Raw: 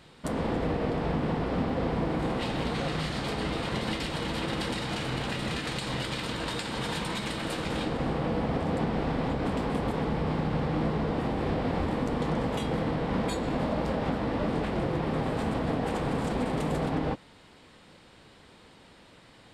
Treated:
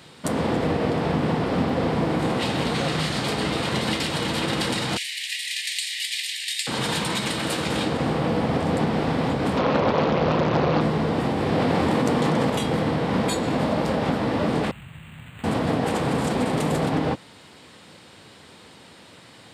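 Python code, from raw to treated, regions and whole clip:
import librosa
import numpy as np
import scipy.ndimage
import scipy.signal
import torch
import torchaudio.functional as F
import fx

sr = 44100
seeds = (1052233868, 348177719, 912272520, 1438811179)

y = fx.chain(x, sr, fx.steep_highpass(hz=1800.0, slope=96),
    fx.high_shelf(hz=9600.0, db=6.5), at=(4.97, 6.67))
y = fx.chain(y, sr, fx.lowpass(hz=4600.0, slope=24),
    fx.small_body(hz=(550.0, 1000.0, 2200.0, 3300.0), ring_ms=25, db=10),
    fx.doppler_dist(depth_ms=0.71), at=(9.57, 10.81))
y = fx.chain(y, sr, fx.highpass(hz=100.0, slope=12),
    fx.env_flatten(amount_pct=100), at=(11.52, 12.5))
y = fx.chain(y, sr, fx.brickwall_bandstop(low_hz=320.0, high_hz=2600.0),
    fx.tone_stack(knobs='10-0-10'),
    fx.resample_linear(factor=8), at=(14.71, 15.44))
y = scipy.signal.sosfilt(scipy.signal.butter(4, 79.0, 'highpass', fs=sr, output='sos'), y)
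y = fx.high_shelf(y, sr, hz=4300.0, db=6.5)
y = y * 10.0 ** (6.0 / 20.0)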